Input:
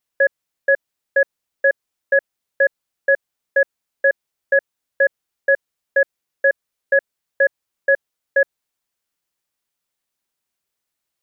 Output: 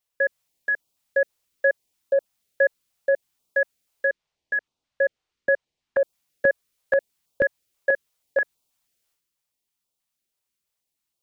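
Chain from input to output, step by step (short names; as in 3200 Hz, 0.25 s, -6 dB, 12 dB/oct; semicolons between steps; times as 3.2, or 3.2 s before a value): bell 1600 Hz -4 dB 0.77 oct; transient shaper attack +1 dB, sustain +7 dB; 4.06–6 air absorption 130 m; stepped notch 6.2 Hz 220–1800 Hz; gain -1.5 dB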